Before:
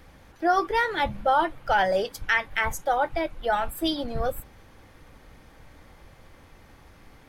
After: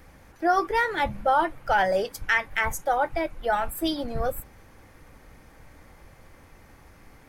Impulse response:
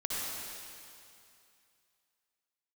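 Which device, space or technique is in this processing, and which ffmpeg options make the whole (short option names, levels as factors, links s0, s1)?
exciter from parts: -filter_complex "[0:a]asplit=2[s0][s1];[s1]highpass=2500,asoftclip=type=tanh:threshold=0.0447,highpass=f=2300:w=0.5412,highpass=f=2300:w=1.3066,volume=0.473[s2];[s0][s2]amix=inputs=2:normalize=0"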